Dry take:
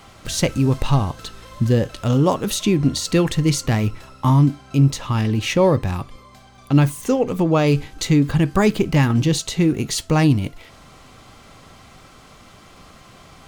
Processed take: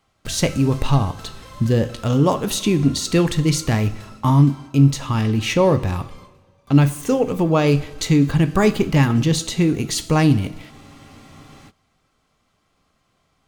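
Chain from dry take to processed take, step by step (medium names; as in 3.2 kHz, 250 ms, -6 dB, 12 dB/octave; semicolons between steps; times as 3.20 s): gate with hold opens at -32 dBFS; on a send at -11 dB: reverberation, pre-delay 3 ms; on the sum: spectral freeze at 10.72 s, 0.98 s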